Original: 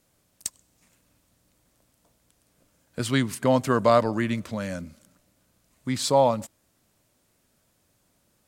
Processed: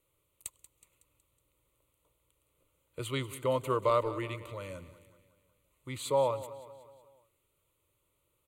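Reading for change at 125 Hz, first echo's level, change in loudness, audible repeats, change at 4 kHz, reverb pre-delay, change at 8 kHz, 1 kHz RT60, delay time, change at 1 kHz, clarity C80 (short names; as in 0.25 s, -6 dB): -9.5 dB, -15.5 dB, -8.0 dB, 4, -10.0 dB, none, -11.0 dB, none, 0.185 s, -8.5 dB, none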